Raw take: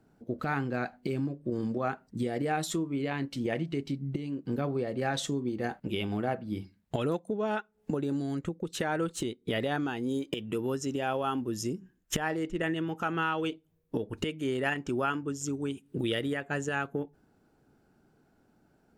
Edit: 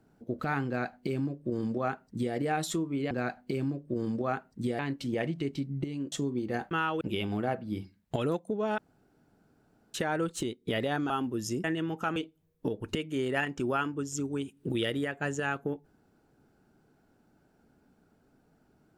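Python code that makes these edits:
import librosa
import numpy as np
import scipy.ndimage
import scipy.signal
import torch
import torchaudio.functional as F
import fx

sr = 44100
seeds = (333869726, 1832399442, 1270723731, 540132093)

y = fx.edit(x, sr, fx.duplicate(start_s=0.67, length_s=1.68, to_s=3.11),
    fx.cut(start_s=4.44, length_s=0.78),
    fx.room_tone_fill(start_s=7.58, length_s=1.16),
    fx.cut(start_s=9.9, length_s=1.34),
    fx.cut(start_s=11.78, length_s=0.85),
    fx.move(start_s=13.15, length_s=0.3, to_s=5.81), tone=tone)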